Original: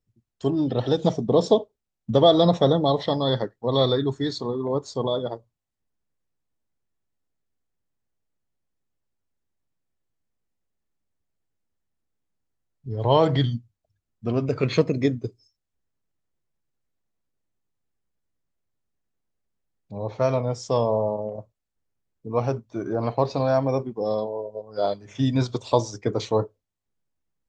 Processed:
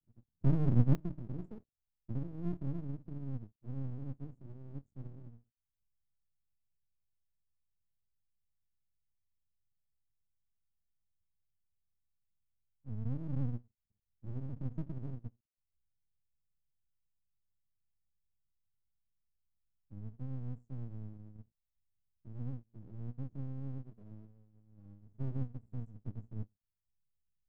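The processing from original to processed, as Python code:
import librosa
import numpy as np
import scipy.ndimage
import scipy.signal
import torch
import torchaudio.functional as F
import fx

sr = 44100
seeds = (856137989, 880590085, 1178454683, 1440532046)

y = scipy.signal.sosfilt(scipy.signal.cheby2(4, 80, [840.0, 4600.0], 'bandstop', fs=sr, output='sos'), x)
y = fx.peak_eq(y, sr, hz=180.0, db=fx.steps((0.0, 13.5), (0.95, -3.5)), octaves=2.4)
y = np.maximum(y, 0.0)
y = y * 10.0 ** (-3.0 / 20.0)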